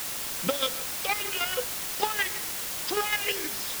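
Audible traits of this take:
chopped level 6.4 Hz, depth 60%, duty 25%
a quantiser's noise floor 6 bits, dither triangular

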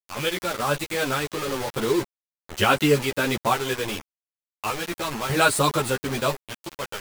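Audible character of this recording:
sample-and-hold tremolo 1.7 Hz, depth 80%
a quantiser's noise floor 6 bits, dither none
a shimmering, thickened sound

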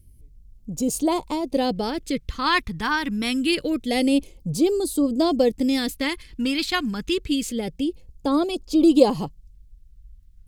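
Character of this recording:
phaser sweep stages 2, 0.26 Hz, lowest notch 560–1,800 Hz

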